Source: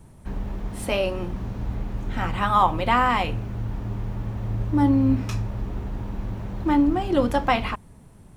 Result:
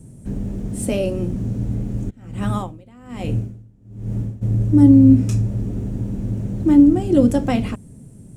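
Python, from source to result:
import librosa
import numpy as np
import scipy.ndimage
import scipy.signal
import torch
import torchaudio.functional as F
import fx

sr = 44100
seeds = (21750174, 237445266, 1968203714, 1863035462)

y = fx.graphic_eq_10(x, sr, hz=(125, 250, 500, 1000, 2000, 4000, 8000), db=(10, 9, 5, -11, -3, -5, 12))
y = fx.tremolo_db(y, sr, hz=1.2, depth_db=28, at=(2.09, 4.41), fade=0.02)
y = F.gain(torch.from_numpy(y), -1.0).numpy()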